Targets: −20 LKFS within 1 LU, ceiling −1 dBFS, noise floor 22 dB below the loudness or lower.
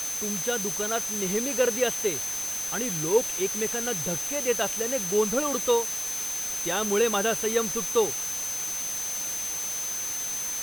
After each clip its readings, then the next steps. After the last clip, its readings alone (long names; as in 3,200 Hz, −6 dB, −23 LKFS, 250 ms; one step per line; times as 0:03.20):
interfering tone 6,200 Hz; level of the tone −30 dBFS; background noise floor −32 dBFS; target noise floor −48 dBFS; integrated loudness −26.0 LKFS; sample peak −10.5 dBFS; target loudness −20.0 LKFS
→ notch filter 6,200 Hz, Q 30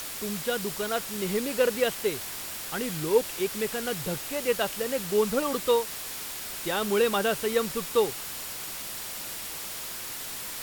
interfering tone none found; background noise floor −37 dBFS; target noise floor −51 dBFS
→ noise reduction from a noise print 14 dB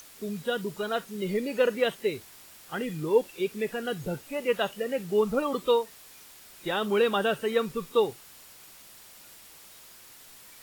background noise floor −51 dBFS; integrated loudness −28.5 LKFS; sample peak −11.0 dBFS; target loudness −20.0 LKFS
→ level +8.5 dB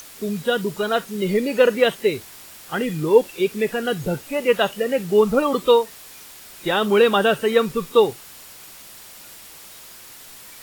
integrated loudness −20.0 LKFS; sample peak −2.5 dBFS; background noise floor −43 dBFS